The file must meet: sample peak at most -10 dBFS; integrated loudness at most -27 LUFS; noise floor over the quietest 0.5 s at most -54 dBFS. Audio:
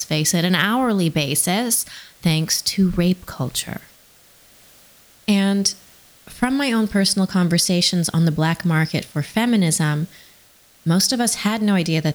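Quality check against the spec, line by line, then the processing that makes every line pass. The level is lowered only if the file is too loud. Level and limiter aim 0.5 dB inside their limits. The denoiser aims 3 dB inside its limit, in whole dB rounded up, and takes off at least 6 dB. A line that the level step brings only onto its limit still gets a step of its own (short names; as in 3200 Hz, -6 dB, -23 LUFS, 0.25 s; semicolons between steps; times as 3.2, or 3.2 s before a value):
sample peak -5.0 dBFS: fail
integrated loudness -19.0 LUFS: fail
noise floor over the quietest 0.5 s -52 dBFS: fail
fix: gain -8.5 dB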